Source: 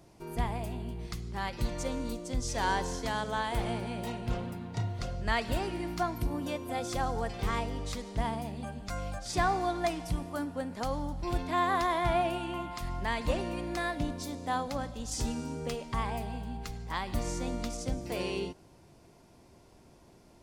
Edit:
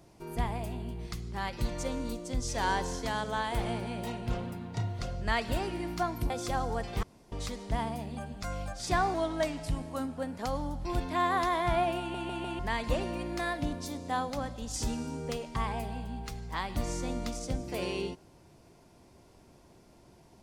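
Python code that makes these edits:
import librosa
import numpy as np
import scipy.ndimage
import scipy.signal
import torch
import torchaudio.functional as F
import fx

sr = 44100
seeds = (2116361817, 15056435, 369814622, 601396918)

y = fx.edit(x, sr, fx.cut(start_s=6.3, length_s=0.46),
    fx.room_tone_fill(start_s=7.49, length_s=0.29),
    fx.speed_span(start_s=9.6, length_s=0.95, speed=0.92),
    fx.stutter_over(start_s=12.37, slice_s=0.15, count=4), tone=tone)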